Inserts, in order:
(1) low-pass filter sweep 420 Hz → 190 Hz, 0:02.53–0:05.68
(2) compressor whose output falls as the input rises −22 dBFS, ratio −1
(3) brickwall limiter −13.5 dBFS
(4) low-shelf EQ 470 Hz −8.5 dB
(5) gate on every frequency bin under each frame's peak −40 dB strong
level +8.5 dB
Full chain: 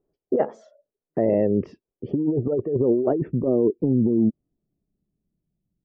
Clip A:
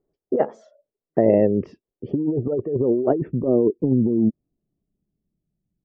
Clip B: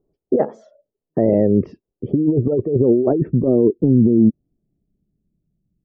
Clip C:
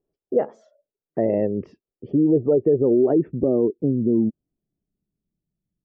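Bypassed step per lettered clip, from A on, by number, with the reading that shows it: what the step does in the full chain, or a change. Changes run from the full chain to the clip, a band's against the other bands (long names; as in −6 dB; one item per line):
3, change in crest factor +4.0 dB
4, 1 kHz band −4.0 dB
2, change in crest factor −2.0 dB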